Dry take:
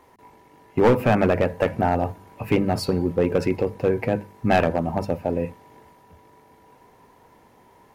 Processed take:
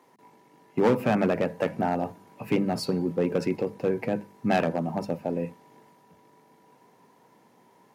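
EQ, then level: high-pass 150 Hz 24 dB/octave; tone controls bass +5 dB, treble +8 dB; treble shelf 6.9 kHz -9 dB; -5.5 dB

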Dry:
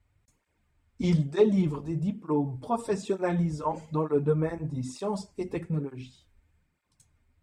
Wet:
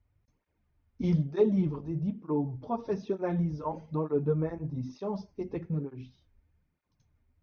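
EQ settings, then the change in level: brick-wall FIR low-pass 6.5 kHz; tilt shelf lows +4.5 dB, about 1.2 kHz; -6.5 dB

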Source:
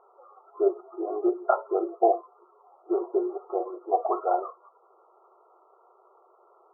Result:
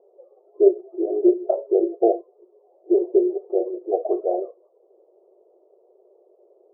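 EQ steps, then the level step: elliptic band-pass 240–590 Hz, stop band 60 dB; +8.5 dB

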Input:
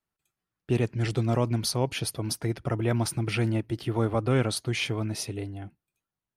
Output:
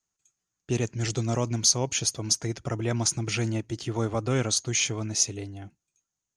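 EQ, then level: resonant low-pass 6.6 kHz, resonance Q 9.9; treble shelf 4.9 kHz +4.5 dB; -2.0 dB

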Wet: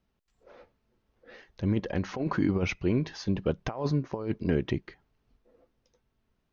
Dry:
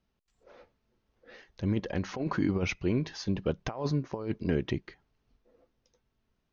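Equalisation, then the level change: treble shelf 4 kHz -5 dB; +2.0 dB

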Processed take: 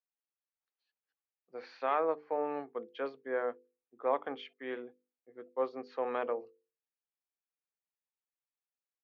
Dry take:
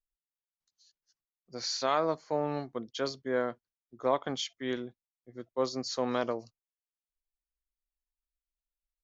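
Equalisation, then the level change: cabinet simulation 280–2800 Hz, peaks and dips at 290 Hz +5 dB, 470 Hz +10 dB, 810 Hz +8 dB, 1.2 kHz +5 dB, 1.7 kHz +5 dB, 2.5 kHz +7 dB; hum notches 50/100/150/200/250/300/350/400/450/500 Hz; -8.0 dB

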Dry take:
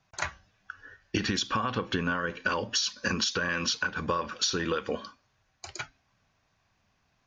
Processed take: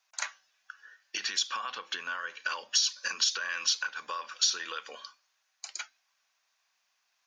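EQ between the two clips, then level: high-pass 920 Hz 12 dB/octave; treble shelf 3.8 kHz +11.5 dB; -5.0 dB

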